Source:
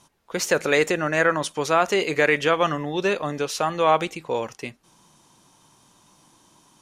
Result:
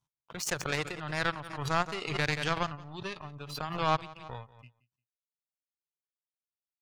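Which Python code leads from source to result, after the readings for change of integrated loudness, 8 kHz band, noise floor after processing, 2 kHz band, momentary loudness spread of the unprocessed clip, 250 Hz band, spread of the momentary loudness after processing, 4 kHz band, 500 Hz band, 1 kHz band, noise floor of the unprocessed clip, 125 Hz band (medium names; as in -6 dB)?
-10.5 dB, -9.0 dB, under -85 dBFS, -10.5 dB, 9 LU, -11.5 dB, 14 LU, -7.0 dB, -16.0 dB, -9.5 dB, -59 dBFS, -3.0 dB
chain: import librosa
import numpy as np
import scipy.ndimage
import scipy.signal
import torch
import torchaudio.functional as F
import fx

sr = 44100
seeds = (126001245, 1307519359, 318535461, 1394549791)

p1 = fx.lowpass(x, sr, hz=3800.0, slope=6)
p2 = fx.power_curve(p1, sr, exponent=2.0)
p3 = fx.graphic_eq(p2, sr, hz=(125, 250, 500, 2000), db=(10, -7, -8, -5))
p4 = fx.noise_reduce_blind(p3, sr, reduce_db=17)
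p5 = p4 + fx.echo_feedback(p4, sr, ms=175, feedback_pct=19, wet_db=-21, dry=0)
p6 = fx.pre_swell(p5, sr, db_per_s=58.0)
y = F.gain(torch.from_numpy(p6), -1.5).numpy()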